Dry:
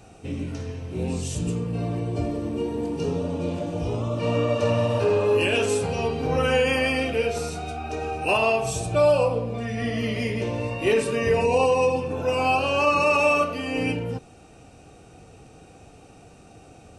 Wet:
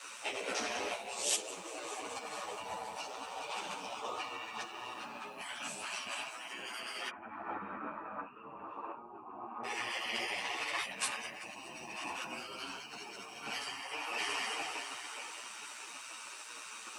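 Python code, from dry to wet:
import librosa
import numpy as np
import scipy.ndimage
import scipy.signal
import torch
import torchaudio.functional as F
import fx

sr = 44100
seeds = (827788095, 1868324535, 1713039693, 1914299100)

y = fx.echo_heads(x, sr, ms=205, heads='all three', feedback_pct=49, wet_db=-16)
y = fx.over_compress(y, sr, threshold_db=-32.0, ratio=-1.0)
y = fx.quant_dither(y, sr, seeds[0], bits=12, dither='none')
y = y * np.sin(2.0 * np.pi * 60.0 * np.arange(len(y)) / sr)
y = fx.lowpass(y, sr, hz=1200.0, slope=24, at=(7.08, 9.63), fade=0.02)
y = fx.spec_gate(y, sr, threshold_db=-15, keep='weak')
y = scipy.signal.sosfilt(scipy.signal.butter(2, 230.0, 'highpass', fs=sr, output='sos'), y)
y = fx.ensemble(y, sr)
y = y * librosa.db_to_amplitude(9.5)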